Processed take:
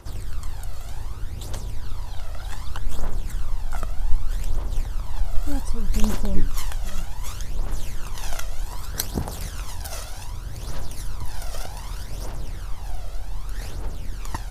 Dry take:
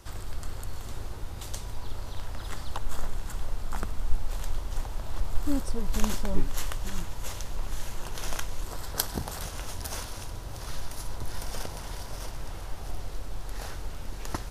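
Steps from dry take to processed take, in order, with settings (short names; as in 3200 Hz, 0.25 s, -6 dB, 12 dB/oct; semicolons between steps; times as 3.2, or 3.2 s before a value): phaser 0.65 Hz, delay 1.6 ms, feedback 56%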